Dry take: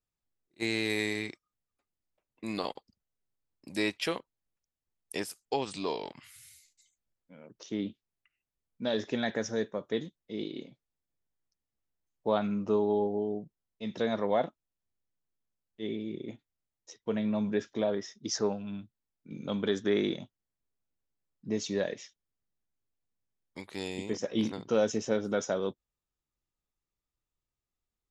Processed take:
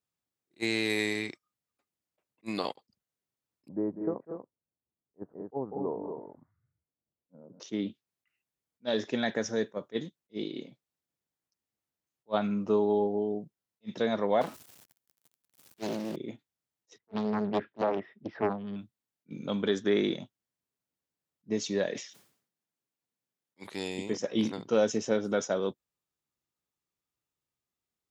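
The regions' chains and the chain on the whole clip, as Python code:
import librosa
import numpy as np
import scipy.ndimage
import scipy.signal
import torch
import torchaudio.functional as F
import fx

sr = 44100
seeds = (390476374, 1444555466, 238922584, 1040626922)

y = fx.chain(x, sr, fx.gaussian_blur(sigma=9.8),
    fx.echo_multitap(ms=(195, 239), db=(-10.5, -7.0)), at=(3.68, 7.6))
y = fx.chain(y, sr, fx.zero_step(step_db=-44.0),
    fx.high_shelf(hz=7200.0, db=7.0),
    fx.doppler_dist(depth_ms=0.71), at=(14.41, 16.16))
y = fx.chain(y, sr, fx.cheby2_lowpass(hz=6100.0, order=4, stop_db=50),
    fx.doppler_dist(depth_ms=0.88), at=(16.98, 18.76))
y = fx.chain(y, sr, fx.highpass(hz=130.0, slope=12),
    fx.sustainer(db_per_s=99.0), at=(21.88, 23.69))
y = scipy.signal.sosfilt(scipy.signal.butter(2, 110.0, 'highpass', fs=sr, output='sos'), y)
y = fx.attack_slew(y, sr, db_per_s=580.0)
y = y * 10.0 ** (1.5 / 20.0)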